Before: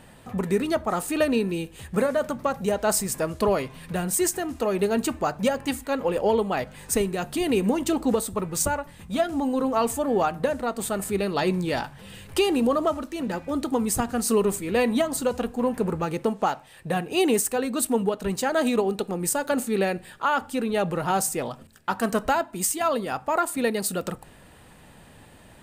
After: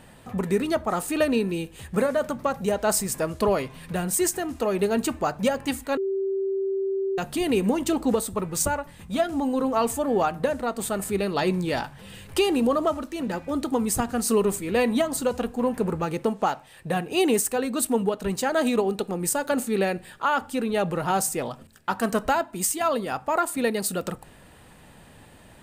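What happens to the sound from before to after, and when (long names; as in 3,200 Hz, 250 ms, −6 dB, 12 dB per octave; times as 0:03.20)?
0:05.97–0:07.18: beep over 388 Hz −23 dBFS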